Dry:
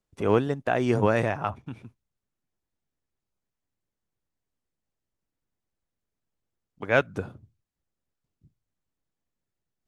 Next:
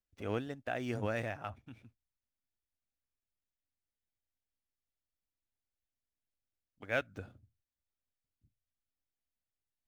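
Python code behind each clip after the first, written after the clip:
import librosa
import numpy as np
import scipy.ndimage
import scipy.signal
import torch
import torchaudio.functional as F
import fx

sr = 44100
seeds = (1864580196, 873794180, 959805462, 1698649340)

y = scipy.ndimage.median_filter(x, 5, mode='constant')
y = fx.graphic_eq_15(y, sr, hz=(160, 400, 1000), db=(-11, -8, -10))
y = y * librosa.db_to_amplitude(-8.0)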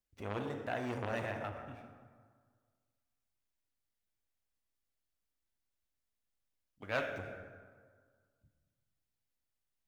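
y = fx.rev_plate(x, sr, seeds[0], rt60_s=1.7, hf_ratio=0.55, predelay_ms=0, drr_db=4.5)
y = fx.transformer_sat(y, sr, knee_hz=1600.0)
y = y * librosa.db_to_amplitude(1.0)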